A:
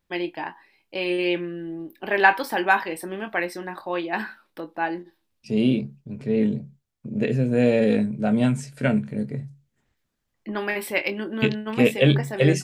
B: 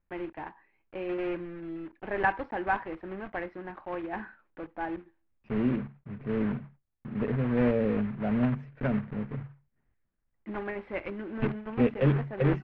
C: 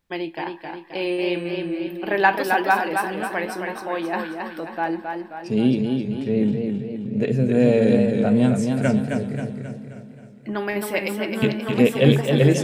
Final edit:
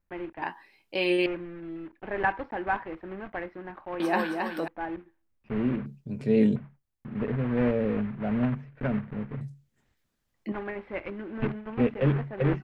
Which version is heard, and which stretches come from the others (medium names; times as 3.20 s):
B
0.42–1.26 s: from A
4.00–4.68 s: from C
5.86–6.56 s: from A
9.41–10.52 s: from A